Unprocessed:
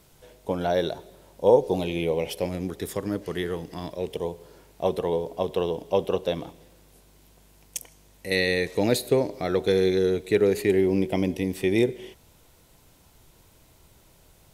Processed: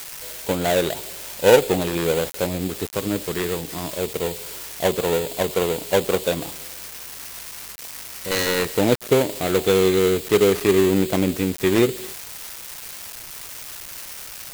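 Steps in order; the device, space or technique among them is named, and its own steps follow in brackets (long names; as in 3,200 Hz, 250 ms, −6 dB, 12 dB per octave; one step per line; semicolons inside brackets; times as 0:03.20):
budget class-D amplifier (gap after every zero crossing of 0.24 ms; spike at every zero crossing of −20 dBFS)
level +4.5 dB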